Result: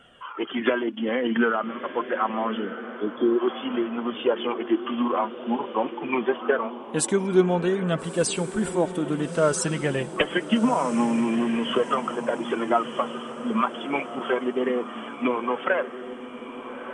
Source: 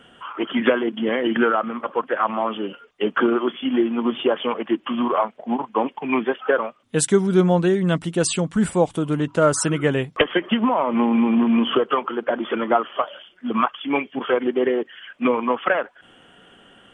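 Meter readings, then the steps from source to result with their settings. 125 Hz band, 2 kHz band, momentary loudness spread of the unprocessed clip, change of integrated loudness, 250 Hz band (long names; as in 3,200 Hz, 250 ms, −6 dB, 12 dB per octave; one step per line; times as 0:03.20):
−6.0 dB, −3.5 dB, 8 LU, −4.0 dB, −4.0 dB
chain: time-frequency box erased 0:02.64–0:03.40, 530–3,200 Hz
flanger 0.25 Hz, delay 1.4 ms, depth 4.4 ms, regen +43%
feedback delay with all-pass diffusion 1,331 ms, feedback 46%, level −11 dB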